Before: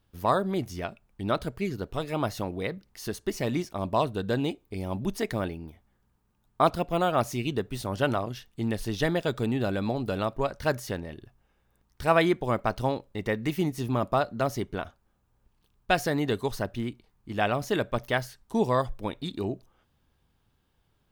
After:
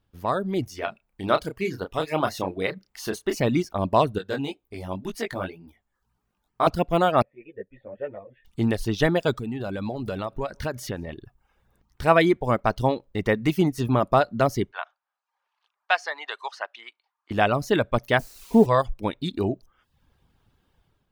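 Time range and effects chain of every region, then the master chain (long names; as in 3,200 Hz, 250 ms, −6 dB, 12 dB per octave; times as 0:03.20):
0:00.69–0:03.40: low-shelf EQ 210 Hz −11.5 dB + double-tracking delay 32 ms −6.5 dB
0:04.18–0:06.67: low-shelf EQ 430 Hz −7.5 dB + chorus effect 2 Hz, delay 16.5 ms, depth 5.1 ms
0:07.22–0:08.45: formant resonators in series e + string-ensemble chorus
0:09.34–0:11.09: downward compressor 3 to 1, threshold −33 dBFS + single-tap delay 162 ms −23 dB
0:14.72–0:17.31: high-pass filter 800 Hz 24 dB per octave + high-frequency loss of the air 130 metres
0:18.19–0:18.66: Bessel low-pass filter 750 Hz, order 4 + comb filter 4.3 ms, depth 82% + bit-depth reduction 8 bits, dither triangular
whole clip: reverb reduction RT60 0.61 s; high-shelf EQ 4,800 Hz −5.5 dB; automatic gain control gain up to 9 dB; level −2 dB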